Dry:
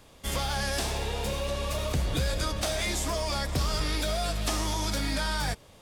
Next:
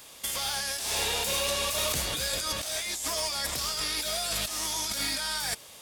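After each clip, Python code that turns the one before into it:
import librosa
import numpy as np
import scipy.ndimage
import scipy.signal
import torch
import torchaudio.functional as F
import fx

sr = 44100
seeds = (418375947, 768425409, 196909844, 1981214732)

y = fx.tilt_eq(x, sr, slope=3.5)
y = fx.over_compress(y, sr, threshold_db=-31.0, ratio=-1.0)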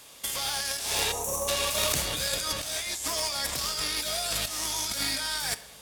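y = fx.spec_box(x, sr, start_s=1.12, length_s=0.36, low_hz=1300.0, high_hz=5500.0, gain_db=-27)
y = fx.cheby_harmonics(y, sr, harmonics=(3,), levels_db=(-13,), full_scale_db=-14.5)
y = fx.room_shoebox(y, sr, seeds[0], volume_m3=590.0, walls='mixed', distance_m=0.31)
y = F.gain(torch.from_numpy(y), 8.5).numpy()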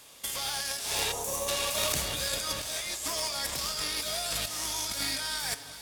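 y = fx.echo_alternate(x, sr, ms=180, hz=960.0, feedback_pct=82, wet_db=-13.5)
y = F.gain(torch.from_numpy(y), -2.5).numpy()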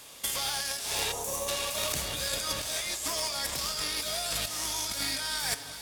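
y = fx.rider(x, sr, range_db=10, speed_s=0.5)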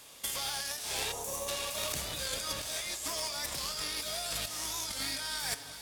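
y = fx.record_warp(x, sr, rpm=45.0, depth_cents=100.0)
y = F.gain(torch.from_numpy(y), -4.0).numpy()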